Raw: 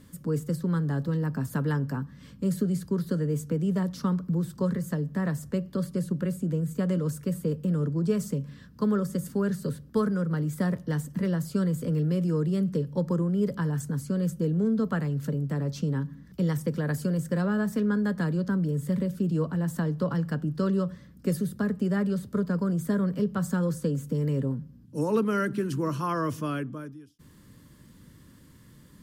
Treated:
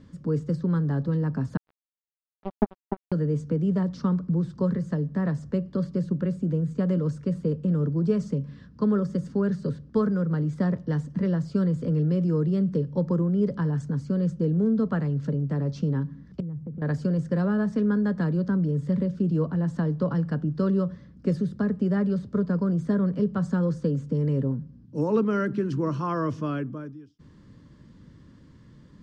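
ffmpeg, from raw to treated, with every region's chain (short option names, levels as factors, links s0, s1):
-filter_complex "[0:a]asettb=1/sr,asplit=3[s0][s1][s2];[s0]atrim=end=1.574[s3];[s1]atrim=start=1.57:end=3.12,asetpts=PTS-STARTPTS,afade=t=in:d=0.004:c=qsin,afade=t=out:st=1.546:d=0.004:c=qsin,highpass=f=180:w=0.5412,highpass=f=180:w=1.3066,equalizer=f=220:t=q:w=4:g=7,equalizer=f=570:t=q:w=4:g=-5,equalizer=f=950:t=q:w=4:g=-8,equalizer=f=1500:t=q:w=4:g=-9,equalizer=f=2200:t=q:w=4:g=9,lowpass=f=3400:w=0.5412,lowpass=f=3400:w=1.3066,acrusher=bits=2:mix=0:aa=0.5[s4];[s2]atrim=start=3.116[s5];[s3][s4]acrossfade=d=0.004:c1=hsin:c2=qsin[s6];[s6][s5]acrossfade=d=0.004:c1=qsin:c2=hsin,asettb=1/sr,asplit=3[s7][s8][s9];[s7]atrim=end=16.404[s10];[s8]atrim=start=16.4:end=16.82,asetpts=PTS-STARTPTS,afade=t=in:d=0.004:c=qsin,afade=t=out:st=0.416:d=0.004:c=qsin,bandpass=f=100:t=q:w=0.79,acompressor=threshold=0.0178:ratio=3:attack=3.2:release=140:knee=1:detection=peak[s11];[s9]atrim=start=16.816[s12];[s10][s11]acrossfade=d=0.004:c1=hsin:c2=qsin[s13];[s13][s12]acrossfade=d=0.004:c1=qsin:c2=hsin,lowpass=f=5600:w=0.5412,lowpass=f=5600:w=1.3066,equalizer=f=3300:w=0.43:g=-6.5,volume=1.33"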